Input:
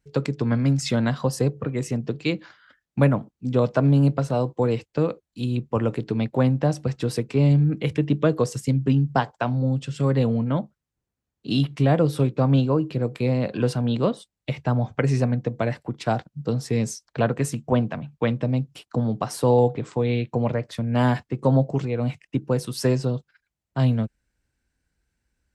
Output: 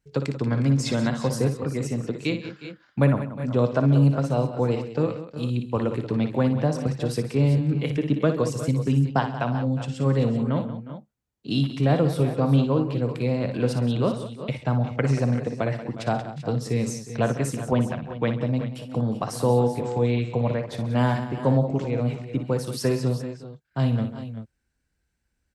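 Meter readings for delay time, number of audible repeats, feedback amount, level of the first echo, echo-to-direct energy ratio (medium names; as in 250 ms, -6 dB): 58 ms, 4, no regular repeats, -9.0 dB, -6.0 dB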